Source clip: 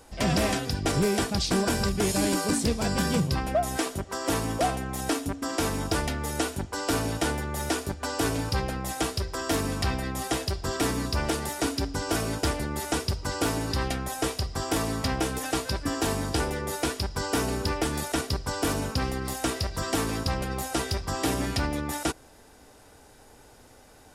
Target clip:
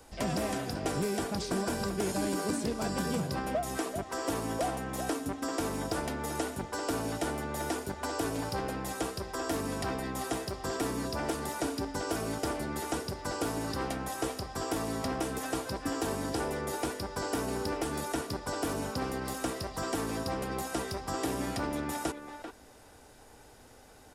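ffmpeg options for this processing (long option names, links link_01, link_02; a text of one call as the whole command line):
ffmpeg -i in.wav -filter_complex "[0:a]acrossover=split=160|1500|6600[link_01][link_02][link_03][link_04];[link_01]acompressor=threshold=-42dB:ratio=4[link_05];[link_02]acompressor=threshold=-27dB:ratio=4[link_06];[link_03]acompressor=threshold=-43dB:ratio=4[link_07];[link_04]acompressor=threshold=-41dB:ratio=4[link_08];[link_05][link_06][link_07][link_08]amix=inputs=4:normalize=0,asplit=2[link_09][link_10];[link_10]adelay=390,highpass=300,lowpass=3400,asoftclip=type=hard:threshold=-24.5dB,volume=-7dB[link_11];[link_09][link_11]amix=inputs=2:normalize=0,volume=-2.5dB" out.wav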